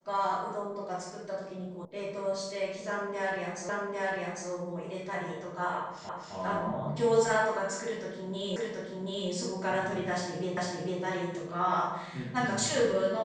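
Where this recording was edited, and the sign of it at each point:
1.85 s: sound stops dead
3.69 s: repeat of the last 0.8 s
6.09 s: repeat of the last 0.26 s
8.56 s: repeat of the last 0.73 s
10.57 s: repeat of the last 0.45 s

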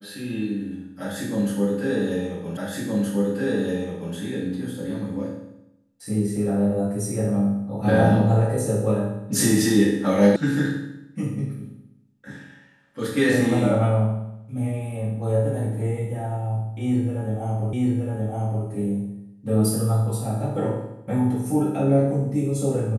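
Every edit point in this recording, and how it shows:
2.57 s: repeat of the last 1.57 s
10.36 s: sound stops dead
17.73 s: repeat of the last 0.92 s

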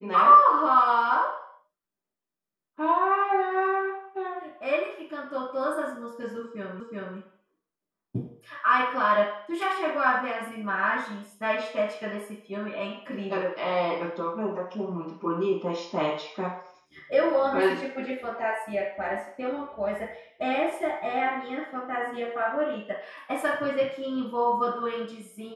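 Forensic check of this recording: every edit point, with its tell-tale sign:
6.80 s: repeat of the last 0.37 s

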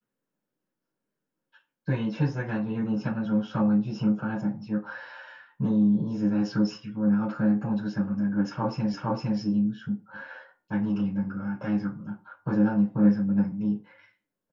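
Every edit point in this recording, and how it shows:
8.94 s: repeat of the last 0.46 s

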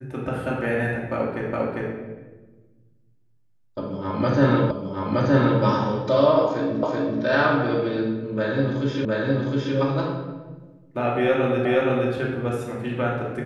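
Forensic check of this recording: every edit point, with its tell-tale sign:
1.53 s: repeat of the last 0.4 s
4.71 s: repeat of the last 0.92 s
6.83 s: repeat of the last 0.38 s
9.05 s: repeat of the last 0.71 s
11.65 s: repeat of the last 0.47 s

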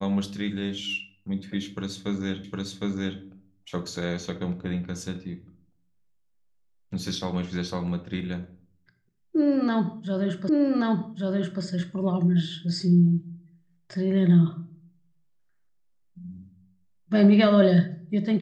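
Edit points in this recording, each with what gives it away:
2.44 s: repeat of the last 0.76 s
10.49 s: repeat of the last 1.13 s

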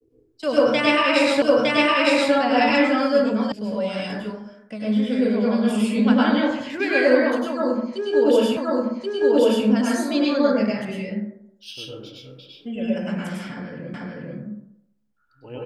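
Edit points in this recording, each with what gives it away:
1.42 s: repeat of the last 0.91 s
3.52 s: sound stops dead
8.57 s: repeat of the last 1.08 s
13.94 s: repeat of the last 0.44 s

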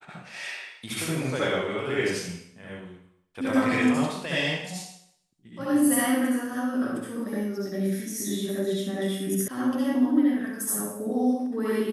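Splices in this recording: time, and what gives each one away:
9.48 s: sound stops dead

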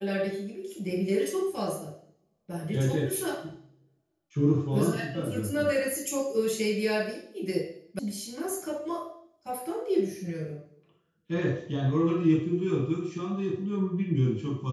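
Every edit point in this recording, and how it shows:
7.99 s: sound stops dead

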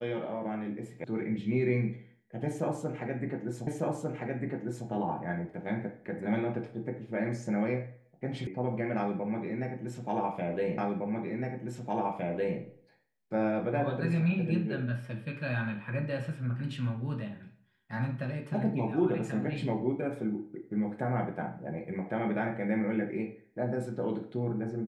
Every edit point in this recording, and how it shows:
1.04 s: sound stops dead
3.67 s: repeat of the last 1.2 s
8.47 s: sound stops dead
10.78 s: repeat of the last 1.81 s

